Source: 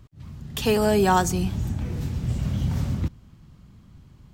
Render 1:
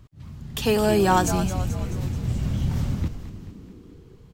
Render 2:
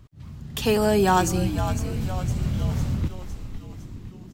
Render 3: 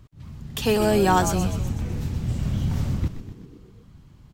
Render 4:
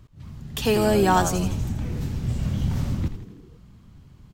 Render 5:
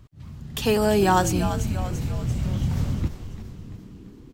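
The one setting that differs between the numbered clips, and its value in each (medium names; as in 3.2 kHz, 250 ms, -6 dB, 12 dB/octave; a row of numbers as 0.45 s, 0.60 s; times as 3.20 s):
frequency-shifting echo, time: 216 ms, 507 ms, 125 ms, 82 ms, 341 ms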